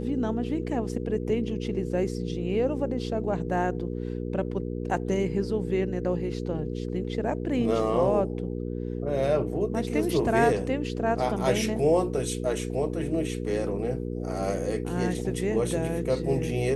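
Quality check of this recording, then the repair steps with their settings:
hum 60 Hz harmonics 8 -32 dBFS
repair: de-hum 60 Hz, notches 8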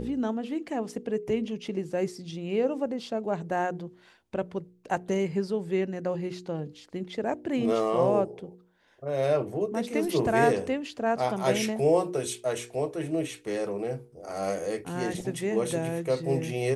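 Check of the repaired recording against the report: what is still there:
nothing left

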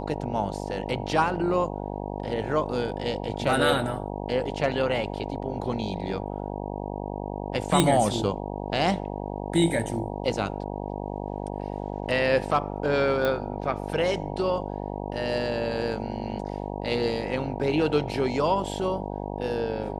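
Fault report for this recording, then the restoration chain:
buzz 50 Hz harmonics 19 -33 dBFS
7.80 s: pop -5 dBFS
13.25 s: pop -14 dBFS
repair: de-click; de-hum 50 Hz, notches 19

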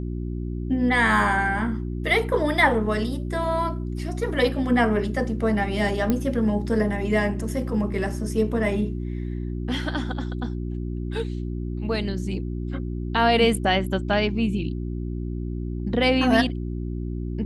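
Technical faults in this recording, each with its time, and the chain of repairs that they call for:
hum 60 Hz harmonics 6 -29 dBFS
6.10 s: pop -10 dBFS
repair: de-click; de-hum 60 Hz, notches 6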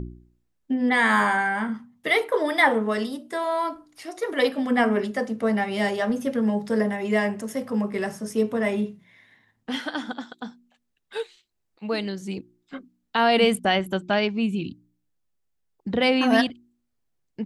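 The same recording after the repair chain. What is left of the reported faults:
nothing left

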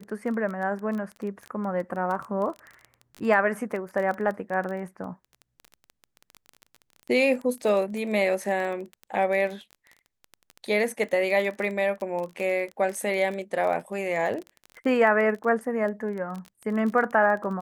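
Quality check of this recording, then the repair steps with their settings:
crackle 21 per s -31 dBFS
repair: de-click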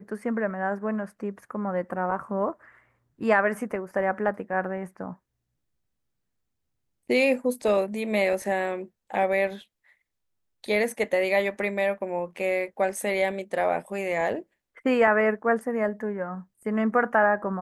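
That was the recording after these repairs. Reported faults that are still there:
nothing left

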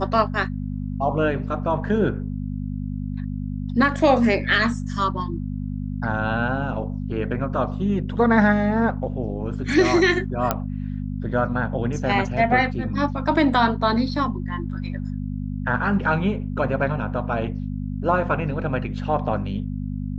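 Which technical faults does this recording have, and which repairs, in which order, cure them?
hum 50 Hz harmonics 5 -28 dBFS
10.51 s: pop -6 dBFS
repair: de-click; de-hum 50 Hz, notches 5

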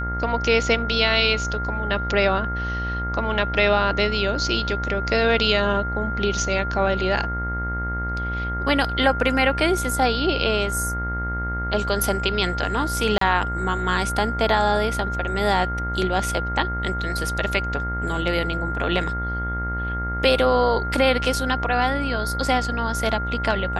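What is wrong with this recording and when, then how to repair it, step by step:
buzz 60 Hz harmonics 36 -28 dBFS
whine 1.4 kHz -27 dBFS
13.18–13.21 s: dropout 33 ms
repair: de-hum 60 Hz, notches 36; band-stop 1.4 kHz, Q 30; interpolate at 13.18 s, 33 ms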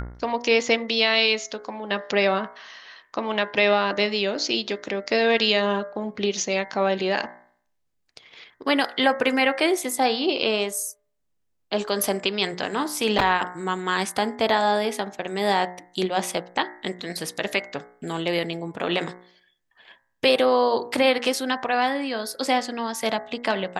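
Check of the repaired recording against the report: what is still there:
nothing left

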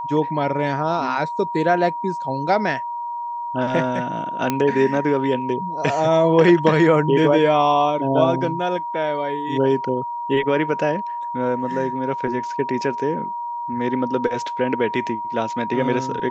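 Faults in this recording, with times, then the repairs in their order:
whine 950 Hz -25 dBFS
4.50 s: pop -6 dBFS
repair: de-click; band-stop 950 Hz, Q 30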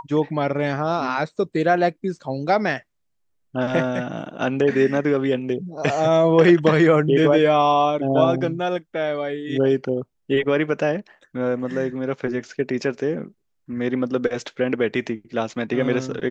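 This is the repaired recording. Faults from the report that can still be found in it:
nothing left

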